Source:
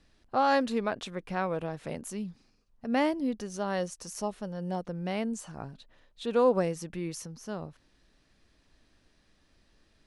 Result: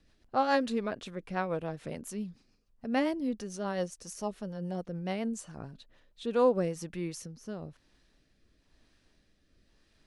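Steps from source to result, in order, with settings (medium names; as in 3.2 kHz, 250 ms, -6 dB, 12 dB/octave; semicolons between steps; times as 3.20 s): rotary cabinet horn 7 Hz, later 1 Hz, at 5.80 s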